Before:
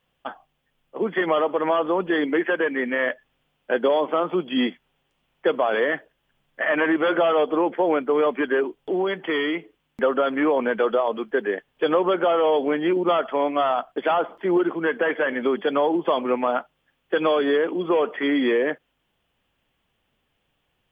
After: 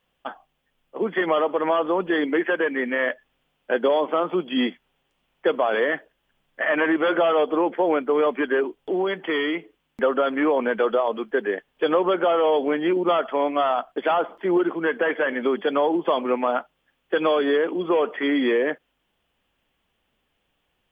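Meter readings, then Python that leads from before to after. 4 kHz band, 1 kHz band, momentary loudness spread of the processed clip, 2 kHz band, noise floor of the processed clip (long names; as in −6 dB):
can't be measured, 0.0 dB, 7 LU, 0.0 dB, −73 dBFS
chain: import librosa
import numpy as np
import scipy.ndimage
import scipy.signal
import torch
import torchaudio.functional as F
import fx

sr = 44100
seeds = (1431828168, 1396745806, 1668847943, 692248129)

y = fx.peak_eq(x, sr, hz=120.0, db=-7.0, octaves=0.59)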